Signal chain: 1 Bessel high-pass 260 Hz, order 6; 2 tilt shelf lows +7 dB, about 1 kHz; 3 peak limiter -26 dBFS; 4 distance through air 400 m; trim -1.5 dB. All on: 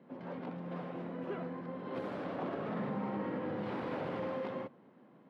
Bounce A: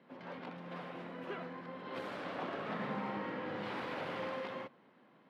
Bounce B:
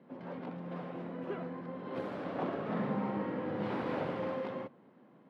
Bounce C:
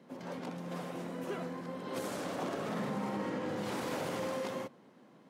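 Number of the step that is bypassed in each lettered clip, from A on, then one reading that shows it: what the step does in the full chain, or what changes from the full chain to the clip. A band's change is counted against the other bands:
2, 4 kHz band +9.5 dB; 3, crest factor change +3.0 dB; 4, 4 kHz band +8.5 dB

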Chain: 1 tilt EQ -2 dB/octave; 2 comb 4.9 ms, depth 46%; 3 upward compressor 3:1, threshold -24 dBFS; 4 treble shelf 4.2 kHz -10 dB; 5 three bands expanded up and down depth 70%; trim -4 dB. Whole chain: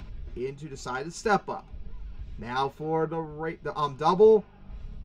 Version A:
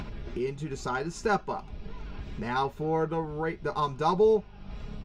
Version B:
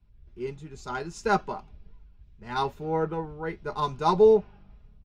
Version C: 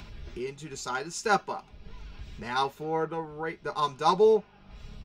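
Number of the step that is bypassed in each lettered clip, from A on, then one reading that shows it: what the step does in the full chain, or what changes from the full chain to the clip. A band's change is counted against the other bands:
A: 5, 500 Hz band -3.0 dB; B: 3, momentary loudness spread change -6 LU; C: 1, 4 kHz band +7.0 dB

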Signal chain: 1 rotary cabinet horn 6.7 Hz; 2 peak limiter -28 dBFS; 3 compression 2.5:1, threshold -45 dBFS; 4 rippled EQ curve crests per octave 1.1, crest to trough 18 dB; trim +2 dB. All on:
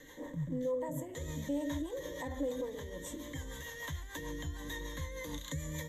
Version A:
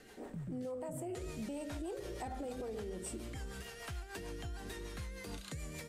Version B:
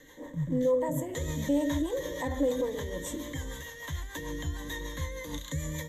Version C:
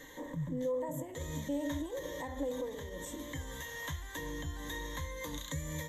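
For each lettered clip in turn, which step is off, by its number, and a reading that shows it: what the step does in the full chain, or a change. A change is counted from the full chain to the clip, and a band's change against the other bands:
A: 4, 1 kHz band +4.0 dB; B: 3, mean gain reduction 5.5 dB; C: 1, 1 kHz band +2.0 dB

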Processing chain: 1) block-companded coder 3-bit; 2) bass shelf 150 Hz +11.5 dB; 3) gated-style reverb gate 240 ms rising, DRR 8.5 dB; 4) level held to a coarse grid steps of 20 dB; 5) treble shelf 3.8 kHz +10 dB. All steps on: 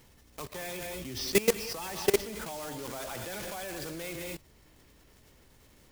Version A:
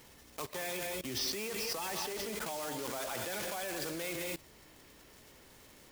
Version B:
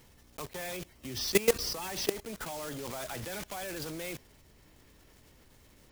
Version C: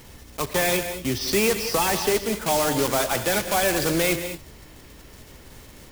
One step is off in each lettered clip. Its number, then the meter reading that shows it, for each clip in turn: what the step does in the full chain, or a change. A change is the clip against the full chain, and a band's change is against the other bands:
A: 2, 500 Hz band -5.5 dB; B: 3, 4 kHz band +2.0 dB; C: 4, crest factor change -9.5 dB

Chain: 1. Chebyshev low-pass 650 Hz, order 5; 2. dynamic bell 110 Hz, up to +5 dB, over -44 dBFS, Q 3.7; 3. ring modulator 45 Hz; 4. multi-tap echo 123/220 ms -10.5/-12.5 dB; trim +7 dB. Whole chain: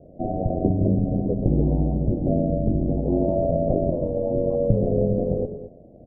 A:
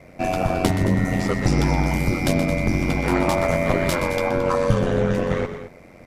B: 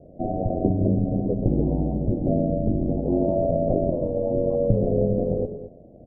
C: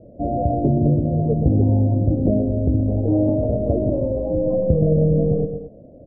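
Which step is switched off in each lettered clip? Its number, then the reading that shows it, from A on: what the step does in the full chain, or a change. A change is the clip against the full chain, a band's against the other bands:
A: 1, 1 kHz band +8.5 dB; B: 2, 125 Hz band -1.5 dB; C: 3, crest factor change -3.5 dB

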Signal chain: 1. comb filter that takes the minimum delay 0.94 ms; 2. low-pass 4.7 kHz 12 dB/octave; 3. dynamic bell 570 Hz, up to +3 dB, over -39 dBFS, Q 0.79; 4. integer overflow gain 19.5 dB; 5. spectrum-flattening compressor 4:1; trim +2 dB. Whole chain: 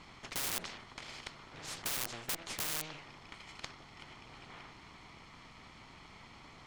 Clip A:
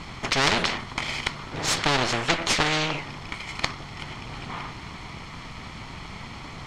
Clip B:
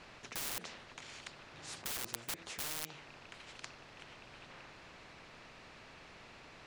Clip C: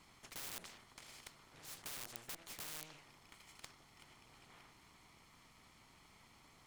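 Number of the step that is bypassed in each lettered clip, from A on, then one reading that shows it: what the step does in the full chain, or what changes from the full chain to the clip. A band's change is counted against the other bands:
4, crest factor change -2.5 dB; 1, crest factor change +3.0 dB; 2, crest factor change +10.5 dB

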